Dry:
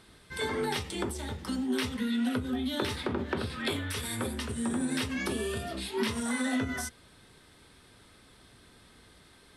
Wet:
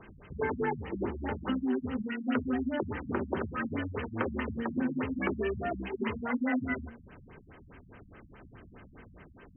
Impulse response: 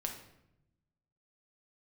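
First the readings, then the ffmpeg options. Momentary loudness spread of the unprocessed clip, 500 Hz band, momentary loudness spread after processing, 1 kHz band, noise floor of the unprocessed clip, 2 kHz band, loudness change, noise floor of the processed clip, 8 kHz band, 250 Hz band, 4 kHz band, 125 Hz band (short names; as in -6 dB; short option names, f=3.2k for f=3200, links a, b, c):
5 LU, +0.5 dB, 5 LU, +1.0 dB, -58 dBFS, -1.5 dB, -1.0 dB, -56 dBFS, under -40 dB, -0.5 dB, -14.5 dB, -1.5 dB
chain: -filter_complex "[0:a]acrossover=split=220|1300[a][b][c];[a]acompressor=threshold=-48dB:ratio=4[d];[b]acompressor=threshold=-37dB:ratio=4[e];[c]acompressor=threshold=-38dB:ratio=4[f];[d][e][f]amix=inputs=3:normalize=0,bandreject=f=58.51:t=h:w=4,bandreject=f=117.02:t=h:w=4,bandreject=f=175.53:t=h:w=4,bandreject=f=234.04:t=h:w=4,bandreject=f=292.55:t=h:w=4,afftfilt=real='re*lt(b*sr/1024,210*pow(3200/210,0.5+0.5*sin(2*PI*4.8*pts/sr)))':imag='im*lt(b*sr/1024,210*pow(3200/210,0.5+0.5*sin(2*PI*4.8*pts/sr)))':win_size=1024:overlap=0.75,volume=7.5dB"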